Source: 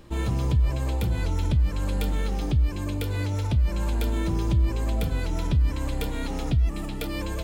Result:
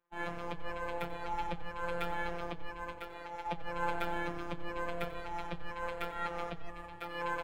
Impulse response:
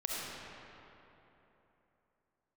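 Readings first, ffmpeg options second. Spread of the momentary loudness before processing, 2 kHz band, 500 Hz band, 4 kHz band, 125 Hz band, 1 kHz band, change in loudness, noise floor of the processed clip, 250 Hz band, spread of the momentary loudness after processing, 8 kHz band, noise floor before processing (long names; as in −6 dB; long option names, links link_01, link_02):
6 LU, −0.5 dB, −5.0 dB, −10.0 dB, −25.0 dB, +1.5 dB, −13.0 dB, −47 dBFS, −14.5 dB, 7 LU, −18.0 dB, −31 dBFS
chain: -filter_complex "[0:a]afreqshift=-30,acrossover=split=530 2200:gain=0.1 1 0.0794[link_01][link_02][link_03];[link_01][link_02][link_03]amix=inputs=3:normalize=0,afftfilt=real='hypot(re,im)*cos(PI*b)':imag='0':win_size=1024:overlap=0.75,agate=range=-33dB:threshold=-37dB:ratio=3:detection=peak,asplit=2[link_04][link_05];[link_05]asplit=3[link_06][link_07][link_08];[link_06]adelay=91,afreqshift=-33,volume=-16dB[link_09];[link_07]adelay=182,afreqshift=-66,volume=-24.2dB[link_10];[link_08]adelay=273,afreqshift=-99,volume=-32.4dB[link_11];[link_09][link_10][link_11]amix=inputs=3:normalize=0[link_12];[link_04][link_12]amix=inputs=2:normalize=0,volume=12dB"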